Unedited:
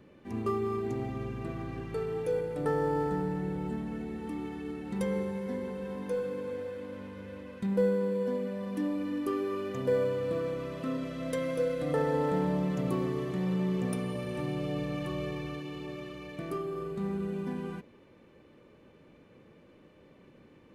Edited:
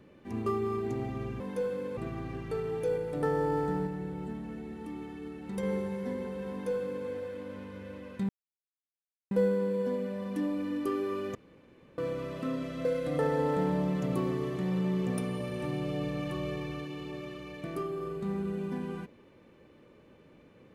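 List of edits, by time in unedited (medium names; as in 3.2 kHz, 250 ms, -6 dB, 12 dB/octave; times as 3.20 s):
3.30–5.06 s: gain -3.5 dB
5.93–6.50 s: copy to 1.40 s
7.72 s: insert silence 1.02 s
9.76–10.39 s: room tone
11.26–11.60 s: delete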